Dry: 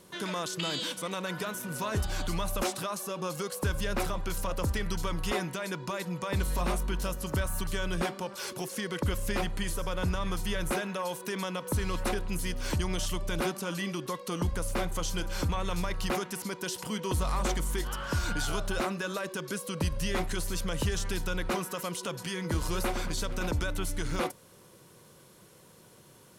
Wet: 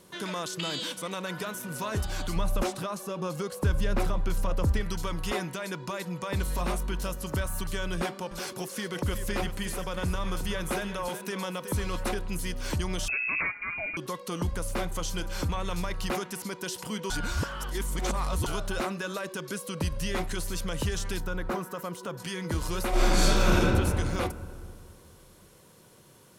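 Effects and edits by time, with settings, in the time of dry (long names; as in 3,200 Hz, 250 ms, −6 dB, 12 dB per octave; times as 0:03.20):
0:02.36–0:04.81: spectral tilt −1.5 dB per octave
0:07.94–0:12.02: single-tap delay 371 ms −10 dB
0:13.08–0:13.97: voice inversion scrambler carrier 2,600 Hz
0:17.10–0:18.46: reverse
0:21.20–0:22.20: flat-topped bell 5,000 Hz −8.5 dB 2.7 octaves
0:22.89–0:23.59: thrown reverb, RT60 2.3 s, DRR −10.5 dB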